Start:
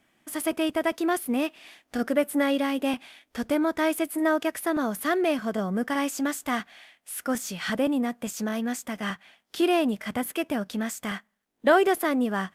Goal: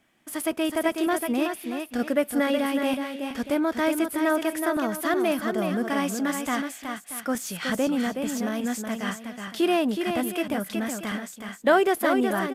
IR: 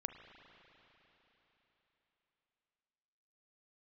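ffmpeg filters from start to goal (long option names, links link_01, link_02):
-af "aecho=1:1:371|632:0.501|0.2"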